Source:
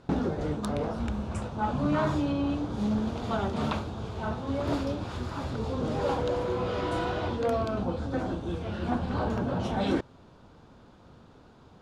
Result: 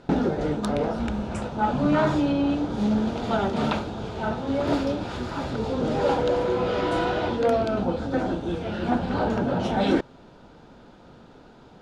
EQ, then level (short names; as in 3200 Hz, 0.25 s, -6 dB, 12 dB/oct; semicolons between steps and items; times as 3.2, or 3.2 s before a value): bell 85 Hz -9 dB 1.2 oct; high shelf 8800 Hz -8.5 dB; notch 1100 Hz, Q 7.6; +6.5 dB